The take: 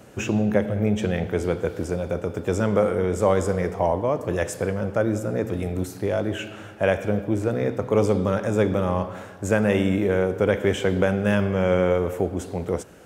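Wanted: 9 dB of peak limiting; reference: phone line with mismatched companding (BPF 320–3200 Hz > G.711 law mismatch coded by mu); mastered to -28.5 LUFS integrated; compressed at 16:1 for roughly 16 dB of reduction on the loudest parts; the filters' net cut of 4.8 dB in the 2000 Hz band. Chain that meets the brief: bell 2000 Hz -6 dB; compressor 16:1, threshold -31 dBFS; limiter -28 dBFS; BPF 320–3200 Hz; G.711 law mismatch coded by mu; gain +10 dB

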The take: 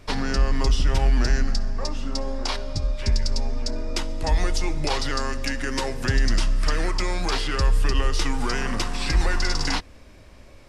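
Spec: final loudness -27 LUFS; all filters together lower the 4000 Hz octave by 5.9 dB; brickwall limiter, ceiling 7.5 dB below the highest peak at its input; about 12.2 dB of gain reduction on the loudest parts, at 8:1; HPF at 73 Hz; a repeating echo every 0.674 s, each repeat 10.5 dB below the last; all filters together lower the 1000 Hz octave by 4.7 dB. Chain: HPF 73 Hz; bell 1000 Hz -5.5 dB; bell 4000 Hz -8 dB; compressor 8:1, threshold -34 dBFS; limiter -29 dBFS; feedback echo 0.674 s, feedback 30%, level -10.5 dB; gain +12.5 dB

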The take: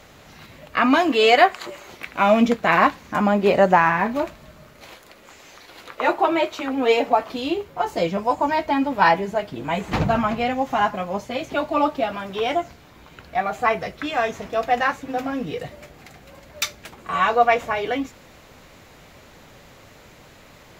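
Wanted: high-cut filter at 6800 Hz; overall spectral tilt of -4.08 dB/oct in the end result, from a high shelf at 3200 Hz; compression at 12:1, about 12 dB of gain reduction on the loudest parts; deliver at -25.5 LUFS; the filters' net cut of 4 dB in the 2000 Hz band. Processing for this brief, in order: LPF 6800 Hz; bell 2000 Hz -3.5 dB; high shelf 3200 Hz -5 dB; compressor 12:1, threshold -23 dBFS; gain +3.5 dB

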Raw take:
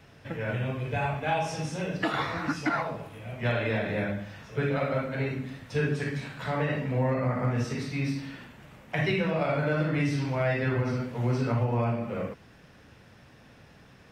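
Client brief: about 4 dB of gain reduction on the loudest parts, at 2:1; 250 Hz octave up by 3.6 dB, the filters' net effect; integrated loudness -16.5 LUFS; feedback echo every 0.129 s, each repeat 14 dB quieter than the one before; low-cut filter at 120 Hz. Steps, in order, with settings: HPF 120 Hz; bell 250 Hz +5 dB; compressor 2:1, threshold -28 dBFS; feedback echo 0.129 s, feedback 20%, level -14 dB; gain +14.5 dB

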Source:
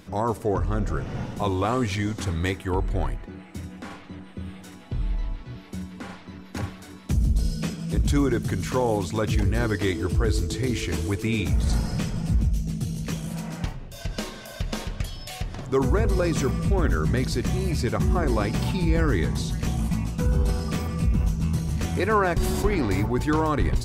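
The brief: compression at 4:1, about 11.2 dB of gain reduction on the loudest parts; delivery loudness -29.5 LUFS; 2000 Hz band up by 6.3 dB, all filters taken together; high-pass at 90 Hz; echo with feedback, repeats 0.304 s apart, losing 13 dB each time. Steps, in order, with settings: HPF 90 Hz; bell 2000 Hz +8 dB; compressor 4:1, threshold -31 dBFS; feedback echo 0.304 s, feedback 22%, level -13 dB; gain +5 dB

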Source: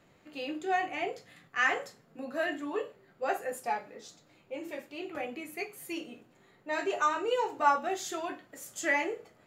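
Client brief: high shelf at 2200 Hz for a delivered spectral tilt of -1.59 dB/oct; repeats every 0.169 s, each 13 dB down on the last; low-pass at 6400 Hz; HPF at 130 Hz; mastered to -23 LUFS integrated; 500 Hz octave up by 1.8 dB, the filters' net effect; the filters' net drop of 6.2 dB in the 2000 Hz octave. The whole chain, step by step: HPF 130 Hz; LPF 6400 Hz; bell 500 Hz +3 dB; bell 2000 Hz -4 dB; high shelf 2200 Hz -7.5 dB; feedback echo 0.169 s, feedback 22%, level -13 dB; gain +11 dB

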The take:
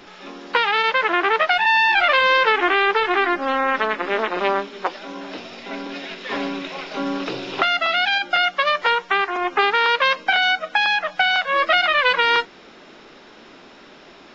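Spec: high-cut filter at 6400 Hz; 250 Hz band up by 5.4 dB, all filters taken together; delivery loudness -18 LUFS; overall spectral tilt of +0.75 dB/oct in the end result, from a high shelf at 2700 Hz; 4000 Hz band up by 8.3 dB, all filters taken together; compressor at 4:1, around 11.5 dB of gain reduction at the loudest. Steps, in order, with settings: LPF 6400 Hz; bell 250 Hz +7 dB; high shelf 2700 Hz +9 dB; bell 4000 Hz +4.5 dB; compressor 4:1, threshold -22 dBFS; gain +6 dB

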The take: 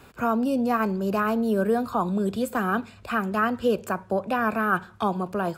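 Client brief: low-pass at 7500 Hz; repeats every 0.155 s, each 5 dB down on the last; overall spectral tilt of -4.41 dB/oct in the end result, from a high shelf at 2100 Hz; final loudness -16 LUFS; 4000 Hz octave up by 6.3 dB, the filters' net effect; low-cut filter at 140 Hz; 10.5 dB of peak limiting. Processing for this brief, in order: HPF 140 Hz; LPF 7500 Hz; high shelf 2100 Hz +5.5 dB; bell 4000 Hz +3.5 dB; limiter -19.5 dBFS; feedback echo 0.155 s, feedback 56%, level -5 dB; gain +11 dB

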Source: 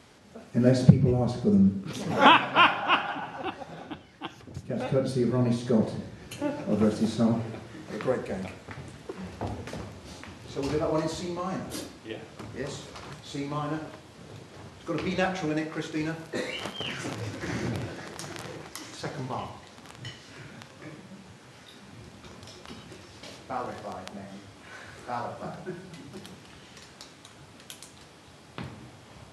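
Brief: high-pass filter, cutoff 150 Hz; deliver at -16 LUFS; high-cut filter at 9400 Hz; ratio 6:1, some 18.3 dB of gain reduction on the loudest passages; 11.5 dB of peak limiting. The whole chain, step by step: HPF 150 Hz; LPF 9400 Hz; compressor 6:1, threshold -32 dBFS; gain +24.5 dB; limiter -3.5 dBFS

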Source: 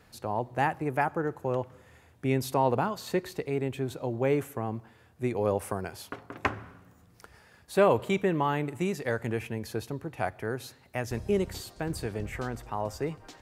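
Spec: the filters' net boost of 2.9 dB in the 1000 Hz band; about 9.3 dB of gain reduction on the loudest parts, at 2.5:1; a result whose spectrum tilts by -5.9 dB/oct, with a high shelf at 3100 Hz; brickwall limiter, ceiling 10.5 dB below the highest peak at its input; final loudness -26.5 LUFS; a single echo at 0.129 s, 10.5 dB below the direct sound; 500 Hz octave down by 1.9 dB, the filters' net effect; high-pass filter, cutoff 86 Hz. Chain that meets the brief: HPF 86 Hz; bell 500 Hz -3.5 dB; bell 1000 Hz +5.5 dB; high shelf 3100 Hz -7.5 dB; compressor 2.5:1, threshold -32 dBFS; limiter -24.5 dBFS; echo 0.129 s -10.5 dB; gain +11.5 dB

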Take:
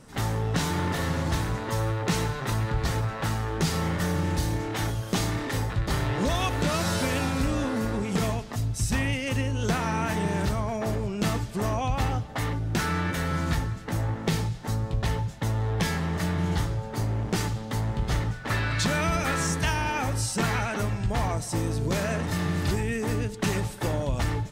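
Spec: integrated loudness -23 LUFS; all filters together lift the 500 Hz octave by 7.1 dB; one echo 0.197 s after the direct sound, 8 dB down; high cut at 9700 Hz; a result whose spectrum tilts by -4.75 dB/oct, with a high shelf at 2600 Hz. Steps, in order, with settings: LPF 9700 Hz; bell 500 Hz +8.5 dB; high shelf 2600 Hz +6 dB; echo 0.197 s -8 dB; gain +1.5 dB

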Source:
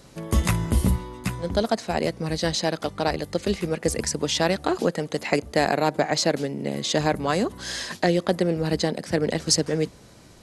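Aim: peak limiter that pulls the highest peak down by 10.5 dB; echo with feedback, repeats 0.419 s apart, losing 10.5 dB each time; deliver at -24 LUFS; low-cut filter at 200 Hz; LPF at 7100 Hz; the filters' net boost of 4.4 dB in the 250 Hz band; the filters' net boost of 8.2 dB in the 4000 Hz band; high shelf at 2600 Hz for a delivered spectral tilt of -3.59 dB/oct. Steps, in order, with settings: HPF 200 Hz; LPF 7100 Hz; bell 250 Hz +8.5 dB; high shelf 2600 Hz +7.5 dB; bell 4000 Hz +4 dB; limiter -10 dBFS; feedback echo 0.419 s, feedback 30%, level -10.5 dB; gain -1.5 dB

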